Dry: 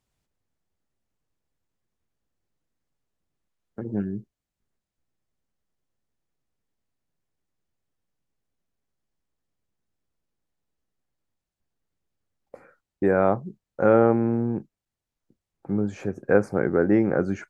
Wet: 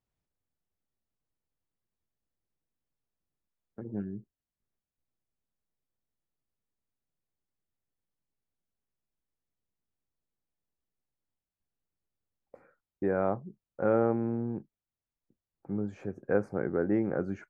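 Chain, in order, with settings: treble shelf 3.1 kHz -9.5 dB; trim -8 dB

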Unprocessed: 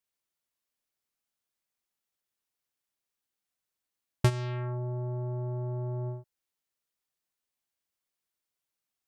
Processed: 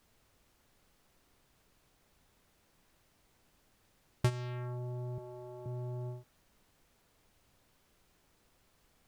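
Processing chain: 5.18–5.66 s: high-pass 280 Hz 12 dB/octave; added noise pink -64 dBFS; trim -6 dB

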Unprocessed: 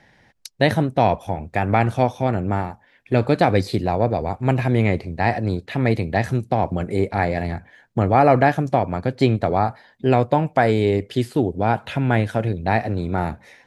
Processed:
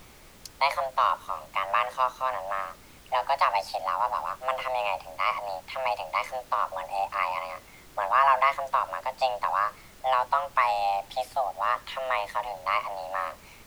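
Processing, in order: Bessel high-pass 270 Hz, order 8; frequency shift +390 Hz; added noise pink -46 dBFS; trim -5.5 dB

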